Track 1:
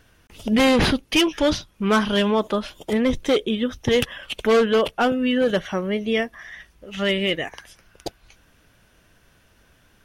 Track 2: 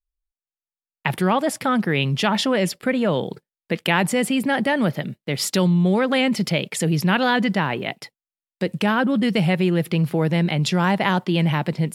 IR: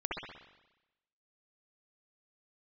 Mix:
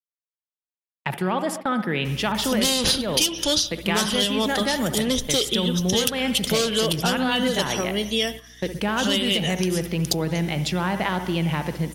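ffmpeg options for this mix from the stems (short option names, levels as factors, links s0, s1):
-filter_complex "[0:a]aeval=exprs='val(0)+0.0112*(sin(2*PI*60*n/s)+sin(2*PI*2*60*n/s)/2+sin(2*PI*3*60*n/s)/3+sin(2*PI*4*60*n/s)/4+sin(2*PI*5*60*n/s)/5)':c=same,aexciter=amount=10.7:drive=2.3:freq=3200,adelay=2050,volume=0.708,asplit=2[s0][s1];[s1]volume=0.126[s2];[1:a]agate=range=0.0562:threshold=0.0355:ratio=16:detection=peak,lowshelf=f=85:g=-9,volume=0.596,asplit=2[s3][s4];[s4]volume=0.266[s5];[2:a]atrim=start_sample=2205[s6];[s2][s5]amix=inputs=2:normalize=0[s7];[s7][s6]afir=irnorm=-1:irlink=0[s8];[s0][s3][s8]amix=inputs=3:normalize=0,agate=range=0.316:threshold=0.0251:ratio=16:detection=peak,acompressor=threshold=0.126:ratio=6"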